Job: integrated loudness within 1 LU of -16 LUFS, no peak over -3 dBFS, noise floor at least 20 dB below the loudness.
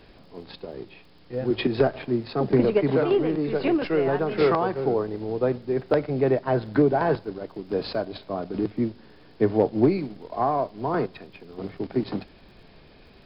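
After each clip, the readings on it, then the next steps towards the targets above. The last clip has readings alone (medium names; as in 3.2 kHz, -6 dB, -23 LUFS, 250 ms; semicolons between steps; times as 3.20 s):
tick rate 31 per s; loudness -25.0 LUFS; peak level -8.5 dBFS; loudness target -16.0 LUFS
-> de-click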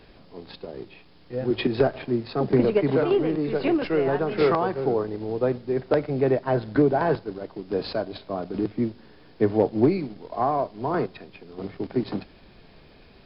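tick rate 0 per s; loudness -25.0 LUFS; peak level -8.5 dBFS; loudness target -16.0 LUFS
-> trim +9 dB; peak limiter -3 dBFS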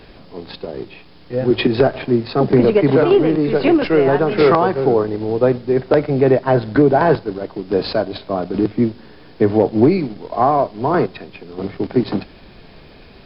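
loudness -16.5 LUFS; peak level -3.0 dBFS; noise floor -43 dBFS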